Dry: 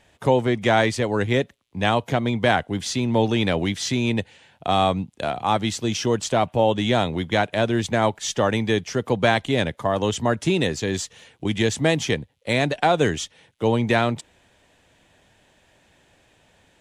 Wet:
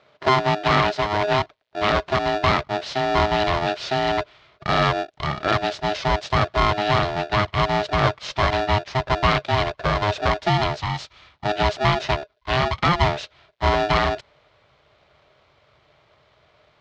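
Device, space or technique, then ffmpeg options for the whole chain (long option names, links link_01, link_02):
ring modulator pedal into a guitar cabinet: -filter_complex "[0:a]asettb=1/sr,asplit=3[link_01][link_02][link_03];[link_01]atrim=end=10.774[link_04];[link_02]atrim=start=10.77:end=11.44,asetpts=PTS-STARTPTS,afade=type=in:duration=0.004:curve=qsin,afade=type=out:start_time=0.666:duration=0.004:curve=qsin,highpass=frequency=250:width=0.5412,highpass=frequency=250:width=1.3066[link_05];[link_03]atrim=start=11.436[link_06];[link_04][link_05]acrossfade=duration=0.004:curve1=hsin:curve2=qsin[link_07];[link_07][link_06]acrossfade=duration=0.004:curve1=qsin:curve2=hsin,aeval=exprs='val(0)*sgn(sin(2*PI*520*n/s))':channel_layout=same,highpass=110,equalizer=frequency=140:width_type=q:width=4:gain=5,equalizer=frequency=250:width_type=q:width=4:gain=-4,equalizer=frequency=600:width_type=q:width=4:gain=8,equalizer=frequency=2700:width_type=q:width=4:gain=-3,lowpass=frequency=4500:width=0.5412,lowpass=frequency=4500:width=1.3066,asubboost=boost=8:cutoff=74"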